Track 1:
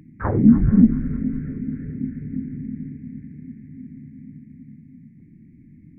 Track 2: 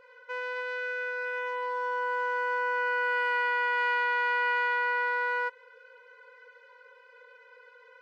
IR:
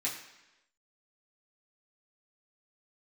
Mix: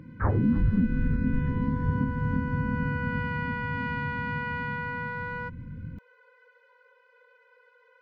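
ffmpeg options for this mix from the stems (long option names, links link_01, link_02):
-filter_complex "[0:a]asubboost=boost=4.5:cutoff=150,alimiter=limit=-10.5dB:level=0:latency=1:release=259,equalizer=frequency=92:width=2:gain=4.5,volume=0.5dB[link_01];[1:a]volume=-5.5dB[link_02];[link_01][link_02]amix=inputs=2:normalize=0,highshelf=frequency=4800:gain=-8,alimiter=limit=-15.5dB:level=0:latency=1:release=430"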